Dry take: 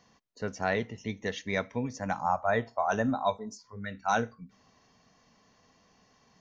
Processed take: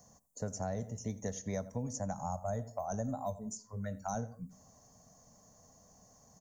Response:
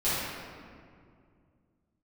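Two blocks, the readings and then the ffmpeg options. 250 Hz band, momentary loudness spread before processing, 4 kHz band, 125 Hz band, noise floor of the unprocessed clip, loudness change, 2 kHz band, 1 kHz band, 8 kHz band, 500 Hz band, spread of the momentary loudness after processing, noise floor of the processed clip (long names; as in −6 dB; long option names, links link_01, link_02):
−6.0 dB, 11 LU, −13.0 dB, −0.5 dB, −66 dBFS, −8.0 dB, −20.0 dB, −11.0 dB, can't be measured, −8.0 dB, 6 LU, −64 dBFS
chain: -filter_complex "[0:a]firequalizer=gain_entry='entry(100,0);entry(370,-12);entry(590,0);entry(960,-9);entry(2600,-25);entry(4200,-15);entry(7100,11)':delay=0.05:min_phase=1,asplit=2[link_01][link_02];[link_02]adelay=88,lowpass=frequency=2100:poles=1,volume=-18.5dB,asplit=2[link_03][link_04];[link_04]adelay=88,lowpass=frequency=2100:poles=1,volume=0.29[link_05];[link_03][link_05]amix=inputs=2:normalize=0[link_06];[link_01][link_06]amix=inputs=2:normalize=0,acrossover=split=260|6000[link_07][link_08][link_09];[link_07]acompressor=threshold=-44dB:ratio=4[link_10];[link_08]acompressor=threshold=-45dB:ratio=4[link_11];[link_09]acompressor=threshold=-56dB:ratio=4[link_12];[link_10][link_11][link_12]amix=inputs=3:normalize=0,volume=6dB"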